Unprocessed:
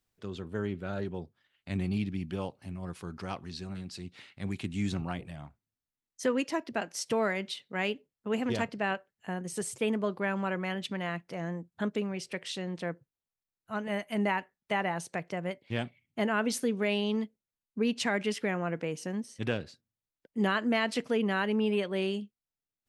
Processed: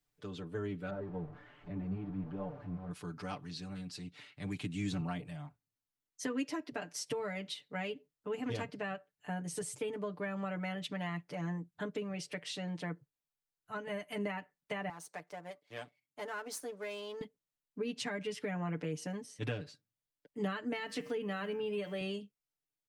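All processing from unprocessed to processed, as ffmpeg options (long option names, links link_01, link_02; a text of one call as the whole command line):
ffmpeg -i in.wav -filter_complex "[0:a]asettb=1/sr,asplit=3[link_01][link_02][link_03];[link_01]atrim=end=0.904[link_04];[link_02]atrim=start=0.9:end=2.91,asetpts=PTS-STARTPTS,afade=type=in:duration=0.004:curve=qsin,afade=type=out:start_time=2.006:duration=0.004:curve=qsin,aeval=exprs='val(0)+0.5*0.0141*sgn(val(0))':channel_layout=same,lowpass=1100,flanger=delay=4.6:depth=9.1:regen=47:speed=1.3:shape=triangular[link_05];[link_03]atrim=start=2.906[link_06];[link_04][link_05]acrossfade=duration=0.004:curve1=hsin:curve2=qsin[link_07];[link_07][link_06]acrossfade=duration=0.004:curve1=qsin:curve2=hsin,asettb=1/sr,asplit=3[link_08][link_09][link_10];[link_08]atrim=end=14.894[link_11];[link_09]atrim=start=14.89:end=17.21,asetpts=PTS-STARTPTS,afade=type=in:duration=0.004:curve=qsin,afade=type=out:start_time=2.316:duration=0.004:curve=qsin,aeval=exprs='if(lt(val(0),0),0.447*val(0),val(0))':channel_layout=same,highpass=frequency=850:poles=1,equalizer=frequency=2700:width=1.1:gain=-8.5[link_12];[link_10]atrim=start=17.206[link_13];[link_11][link_12]acrossfade=duration=0.004:curve1=hsin:curve2=qsin[link_14];[link_14][link_13]acrossfade=duration=0.004:curve1=qsin:curve2=hsin,asettb=1/sr,asplit=3[link_15][link_16][link_17];[link_15]atrim=end=20.774[link_18];[link_16]atrim=start=20.77:end=22.01,asetpts=PTS-STARTPTS,afade=type=in:duration=0.004:curve=qsin,afade=type=out:start_time=1.236:duration=0.004:curve=qsin,bandreject=frequency=94.17:width_type=h:width=4,bandreject=frequency=188.34:width_type=h:width=4,bandreject=frequency=282.51:width_type=h:width=4,bandreject=frequency=376.68:width_type=h:width=4,bandreject=frequency=470.85:width_type=h:width=4,bandreject=frequency=565.02:width_type=h:width=4,bandreject=frequency=659.19:width_type=h:width=4,bandreject=frequency=753.36:width_type=h:width=4,bandreject=frequency=847.53:width_type=h:width=4,bandreject=frequency=941.7:width_type=h:width=4,bandreject=frequency=1035.87:width_type=h:width=4,bandreject=frequency=1130.04:width_type=h:width=4,bandreject=frequency=1224.21:width_type=h:width=4,bandreject=frequency=1318.38:width_type=h:width=4,bandreject=frequency=1412.55:width_type=h:width=4,bandreject=frequency=1506.72:width_type=h:width=4,bandreject=frequency=1600.89:width_type=h:width=4,bandreject=frequency=1695.06:width_type=h:width=4,bandreject=frequency=1789.23:width_type=h:width=4,bandreject=frequency=1883.4:width_type=h:width=4,bandreject=frequency=1977.57:width_type=h:width=4,bandreject=frequency=2071.74:width_type=h:width=4,bandreject=frequency=2165.91:width_type=h:width=4,bandreject=frequency=2260.08:width_type=h:width=4,bandreject=frequency=2354.25:width_type=h:width=4,bandreject=frequency=2448.42:width_type=h:width=4,bandreject=frequency=2542.59:width_type=h:width=4,bandreject=frequency=2636.76:width_type=h:width=4,bandreject=frequency=2730.93:width_type=h:width=4,bandreject=frequency=2825.1:width_type=h:width=4,bandreject=frequency=2919.27:width_type=h:width=4,bandreject=frequency=3013.44:width_type=h:width=4,bandreject=frequency=3107.61:width_type=h:width=4,bandreject=frequency=3201.78:width_type=h:width=4,bandreject=frequency=3295.95:width_type=h:width=4,aeval=exprs='val(0)*gte(abs(val(0)),0.002)':channel_layout=same[link_19];[link_17]atrim=start=22.006[link_20];[link_18][link_19]acrossfade=duration=0.004:curve1=hsin:curve2=qsin[link_21];[link_21][link_20]acrossfade=duration=0.004:curve1=qsin:curve2=hsin,aecho=1:1:6.8:0.9,acrossover=split=260[link_22][link_23];[link_23]acompressor=threshold=-32dB:ratio=6[link_24];[link_22][link_24]amix=inputs=2:normalize=0,volume=-5dB" out.wav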